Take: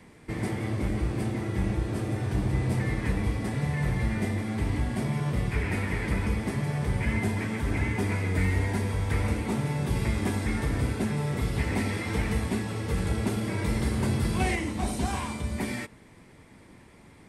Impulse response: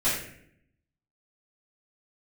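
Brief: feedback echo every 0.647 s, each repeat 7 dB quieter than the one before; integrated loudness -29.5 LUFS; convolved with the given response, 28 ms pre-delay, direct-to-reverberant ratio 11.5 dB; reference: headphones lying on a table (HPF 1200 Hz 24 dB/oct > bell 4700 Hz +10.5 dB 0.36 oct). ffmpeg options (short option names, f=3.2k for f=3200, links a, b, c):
-filter_complex "[0:a]aecho=1:1:647|1294|1941|2588|3235:0.447|0.201|0.0905|0.0407|0.0183,asplit=2[a][b];[1:a]atrim=start_sample=2205,adelay=28[c];[b][c]afir=irnorm=-1:irlink=0,volume=-23.5dB[d];[a][d]amix=inputs=2:normalize=0,highpass=f=1.2k:w=0.5412,highpass=f=1.2k:w=1.3066,equalizer=f=4.7k:t=o:w=0.36:g=10.5,volume=6.5dB"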